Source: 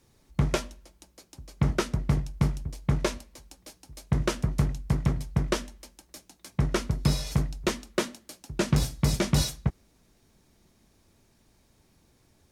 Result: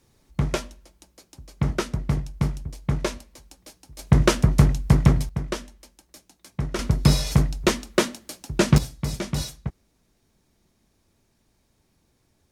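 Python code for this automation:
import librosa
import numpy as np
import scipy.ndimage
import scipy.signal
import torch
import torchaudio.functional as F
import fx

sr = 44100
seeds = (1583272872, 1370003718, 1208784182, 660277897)

y = fx.gain(x, sr, db=fx.steps((0.0, 1.0), (3.99, 9.0), (5.29, -2.0), (6.79, 7.0), (8.78, -3.5)))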